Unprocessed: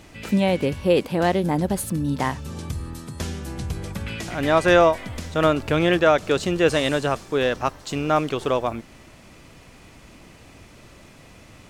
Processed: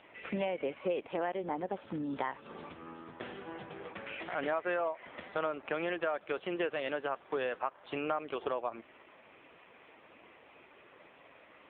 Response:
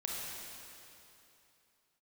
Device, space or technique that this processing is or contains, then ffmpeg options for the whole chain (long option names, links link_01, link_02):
voicemail: -filter_complex "[0:a]asettb=1/sr,asplit=3[link_01][link_02][link_03];[link_01]atrim=end=2.054[link_04];[link_02]atrim=start=2.05:end=2.82,asetpts=PTS-STARTPTS,afade=type=in:duration=0.004:curve=qsin,afade=type=out:start_time=0.766:duration=0.004:curve=qsin,equalizer=frequency=6100:width=1.1:gain=2.5[link_05];[link_03]atrim=start=2.816[link_06];[link_04][link_05]acrossfade=duration=0.004:curve1=hsin:curve2=qsin[link_07];[link_07][link_06]acrossfade=duration=0.004:curve1=qsin:curve2=hsin,highpass=440,lowpass=2800,acompressor=threshold=-29dB:ratio=6,volume=-1dB" -ar 8000 -c:a libopencore_amrnb -b:a 5900